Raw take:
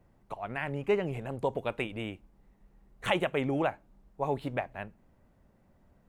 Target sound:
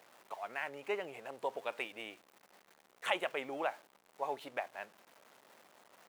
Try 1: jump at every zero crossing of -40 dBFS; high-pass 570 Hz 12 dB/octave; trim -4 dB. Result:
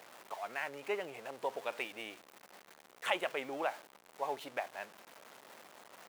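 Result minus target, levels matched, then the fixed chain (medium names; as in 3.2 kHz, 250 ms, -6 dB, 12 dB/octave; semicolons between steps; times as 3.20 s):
jump at every zero crossing: distortion +6 dB
jump at every zero crossing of -47 dBFS; high-pass 570 Hz 12 dB/octave; trim -4 dB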